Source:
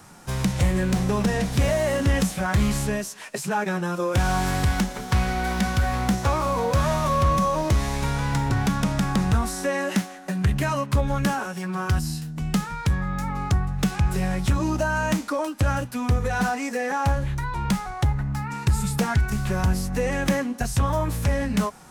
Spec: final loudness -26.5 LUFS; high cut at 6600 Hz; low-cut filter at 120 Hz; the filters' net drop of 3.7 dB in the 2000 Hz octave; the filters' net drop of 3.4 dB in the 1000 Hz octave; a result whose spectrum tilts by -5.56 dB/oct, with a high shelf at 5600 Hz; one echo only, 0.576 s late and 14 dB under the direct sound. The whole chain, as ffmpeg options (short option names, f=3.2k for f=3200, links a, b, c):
-af "highpass=120,lowpass=6.6k,equalizer=f=1k:t=o:g=-3.5,equalizer=f=2k:t=o:g=-4,highshelf=f=5.6k:g=4.5,aecho=1:1:576:0.2,volume=0.5dB"